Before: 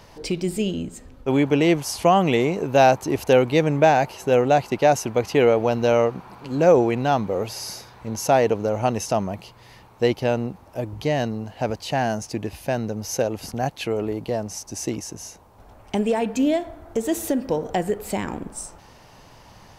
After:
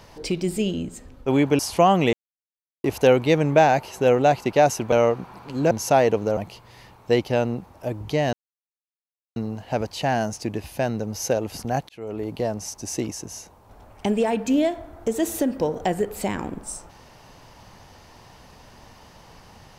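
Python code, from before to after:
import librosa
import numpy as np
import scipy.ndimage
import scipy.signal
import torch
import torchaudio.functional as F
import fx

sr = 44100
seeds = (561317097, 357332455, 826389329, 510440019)

y = fx.edit(x, sr, fx.cut(start_s=1.59, length_s=0.26),
    fx.silence(start_s=2.39, length_s=0.71),
    fx.cut(start_s=5.18, length_s=0.7),
    fx.cut(start_s=6.67, length_s=1.42),
    fx.cut(start_s=8.75, length_s=0.54),
    fx.insert_silence(at_s=11.25, length_s=1.03),
    fx.fade_in_span(start_s=13.78, length_s=0.45), tone=tone)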